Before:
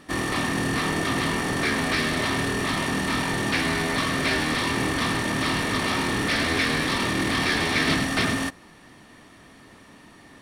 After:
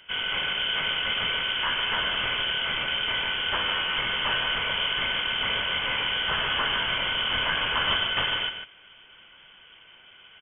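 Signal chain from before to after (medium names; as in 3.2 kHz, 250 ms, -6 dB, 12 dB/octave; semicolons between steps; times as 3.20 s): on a send: delay 149 ms -7.5 dB; on the sum: frequency inversion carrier 3.3 kHz; trim -3 dB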